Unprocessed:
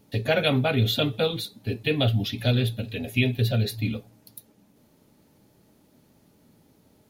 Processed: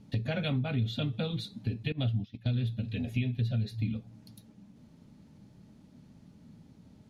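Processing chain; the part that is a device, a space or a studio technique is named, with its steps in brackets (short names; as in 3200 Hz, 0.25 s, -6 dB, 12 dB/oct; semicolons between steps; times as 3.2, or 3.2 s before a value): jukebox (LPF 6800 Hz 12 dB/oct; resonant low shelf 280 Hz +8 dB, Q 1.5; compressor 3:1, threshold -29 dBFS, peak gain reduction 14.5 dB); 1.92–2.54 gate -28 dBFS, range -19 dB; gain -2.5 dB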